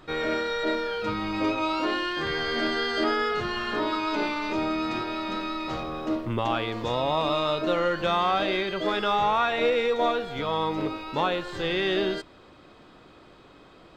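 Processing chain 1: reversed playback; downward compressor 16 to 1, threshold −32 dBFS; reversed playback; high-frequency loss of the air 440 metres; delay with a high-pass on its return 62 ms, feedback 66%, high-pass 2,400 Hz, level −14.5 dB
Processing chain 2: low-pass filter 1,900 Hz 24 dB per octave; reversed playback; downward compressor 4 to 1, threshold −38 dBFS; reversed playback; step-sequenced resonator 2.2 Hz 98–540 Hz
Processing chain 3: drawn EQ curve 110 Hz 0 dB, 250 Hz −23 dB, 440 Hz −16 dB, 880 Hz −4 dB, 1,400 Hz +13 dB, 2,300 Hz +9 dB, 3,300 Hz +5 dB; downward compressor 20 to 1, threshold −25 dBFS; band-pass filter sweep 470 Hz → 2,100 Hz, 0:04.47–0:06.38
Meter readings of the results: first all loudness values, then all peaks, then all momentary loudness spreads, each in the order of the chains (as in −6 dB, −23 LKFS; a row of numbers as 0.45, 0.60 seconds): −38.0, −50.0, −35.5 LKFS; −25.5, −31.5, −20.0 dBFS; 9, 16, 15 LU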